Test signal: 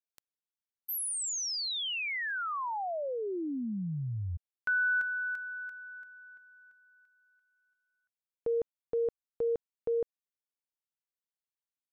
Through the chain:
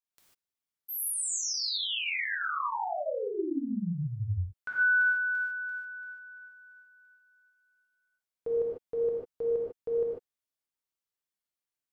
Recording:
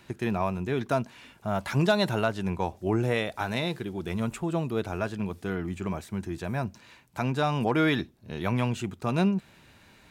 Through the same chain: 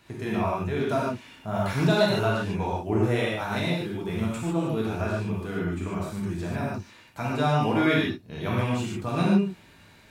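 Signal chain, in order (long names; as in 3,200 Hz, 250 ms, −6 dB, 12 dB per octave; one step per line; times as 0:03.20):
reverb whose tail is shaped and stops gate 170 ms flat, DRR −5.5 dB
level −4.5 dB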